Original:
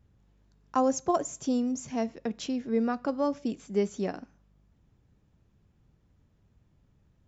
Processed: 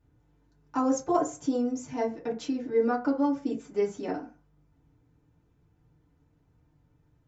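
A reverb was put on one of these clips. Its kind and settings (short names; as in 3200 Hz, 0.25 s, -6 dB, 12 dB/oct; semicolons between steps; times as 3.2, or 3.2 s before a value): FDN reverb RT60 0.31 s, low-frequency decay 0.85×, high-frequency decay 0.4×, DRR -7.5 dB; gain -7.5 dB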